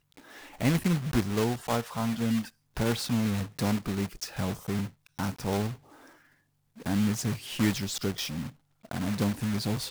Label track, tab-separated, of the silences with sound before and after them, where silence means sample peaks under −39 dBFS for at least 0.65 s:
5.740000	6.800000	silence